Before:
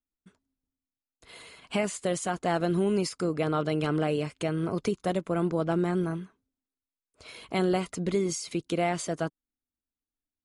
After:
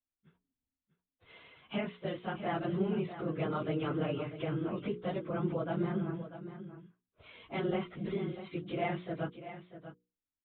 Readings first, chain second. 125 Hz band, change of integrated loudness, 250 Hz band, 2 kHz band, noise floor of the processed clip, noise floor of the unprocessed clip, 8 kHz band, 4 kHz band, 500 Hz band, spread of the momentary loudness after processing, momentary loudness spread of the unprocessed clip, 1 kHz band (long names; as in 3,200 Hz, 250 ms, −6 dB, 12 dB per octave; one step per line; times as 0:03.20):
−5.5 dB, −7.0 dB, −6.5 dB, −6.5 dB, below −85 dBFS, below −85 dBFS, below −40 dB, −9.0 dB, −7.5 dB, 15 LU, 8 LU, −7.0 dB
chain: random phases in long frames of 50 ms
parametric band 110 Hz +3.5 dB 1.1 octaves
mains-hum notches 60/120/180/240/300/360/420/480 Hz
downsampling to 8,000 Hz
single-tap delay 643 ms −12 dB
level −7 dB